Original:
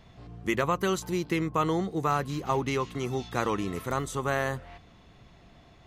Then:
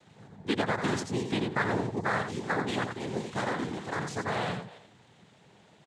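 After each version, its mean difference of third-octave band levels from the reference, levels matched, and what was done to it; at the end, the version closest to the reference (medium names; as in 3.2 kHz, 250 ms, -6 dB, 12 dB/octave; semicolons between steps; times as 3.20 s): 6.0 dB: noise-vocoded speech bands 6; delay 86 ms -7 dB; trim -2.5 dB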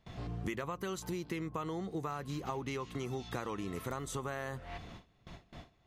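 4.5 dB: gate with hold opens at -44 dBFS; in parallel at -2 dB: peak limiter -22 dBFS, peak gain reduction 8 dB; on the sum: compression 12:1, threshold -36 dBFS, peak gain reduction 17.5 dB; trim +1 dB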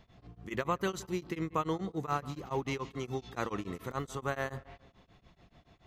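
3.0 dB: peaking EQ 9.8 kHz -6 dB 0.59 oct; tape echo 175 ms, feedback 37%, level -16 dB, low-pass 1.6 kHz; tremolo of two beating tones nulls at 7 Hz; trim -4 dB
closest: third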